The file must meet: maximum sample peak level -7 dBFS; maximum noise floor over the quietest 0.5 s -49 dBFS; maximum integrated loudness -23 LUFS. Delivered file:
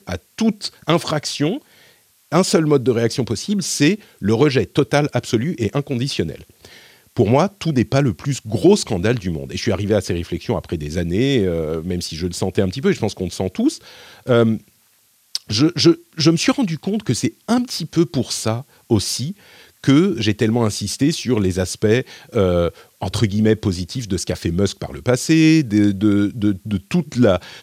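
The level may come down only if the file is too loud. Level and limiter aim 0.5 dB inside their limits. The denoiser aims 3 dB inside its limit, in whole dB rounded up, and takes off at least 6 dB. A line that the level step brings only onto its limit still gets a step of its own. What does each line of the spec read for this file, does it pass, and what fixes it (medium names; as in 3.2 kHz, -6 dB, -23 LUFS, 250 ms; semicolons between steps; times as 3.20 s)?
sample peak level -2.0 dBFS: fail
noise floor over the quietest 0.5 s -58 dBFS: pass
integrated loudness -19.0 LUFS: fail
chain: trim -4.5 dB; peak limiter -7.5 dBFS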